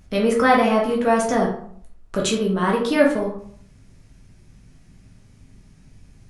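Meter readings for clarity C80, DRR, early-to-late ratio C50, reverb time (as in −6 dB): 10.0 dB, −2.5 dB, 5.5 dB, 0.60 s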